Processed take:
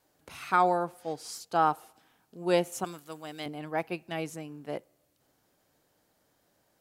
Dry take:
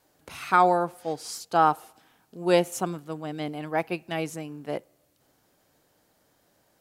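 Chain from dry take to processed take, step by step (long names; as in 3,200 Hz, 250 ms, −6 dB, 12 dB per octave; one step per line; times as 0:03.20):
0:02.84–0:03.46: spectral tilt +3 dB per octave
level −4.5 dB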